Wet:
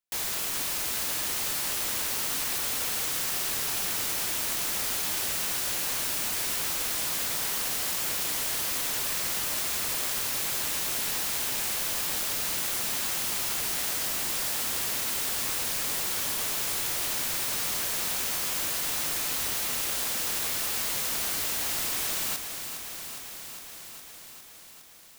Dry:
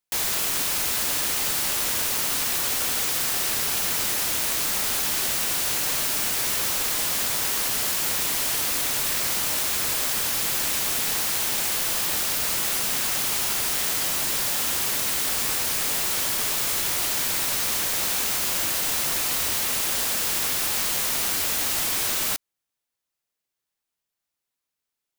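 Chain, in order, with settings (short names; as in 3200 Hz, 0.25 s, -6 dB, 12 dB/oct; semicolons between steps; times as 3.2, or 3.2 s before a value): lo-fi delay 0.409 s, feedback 80%, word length 8-bit, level -9 dB; gain -6 dB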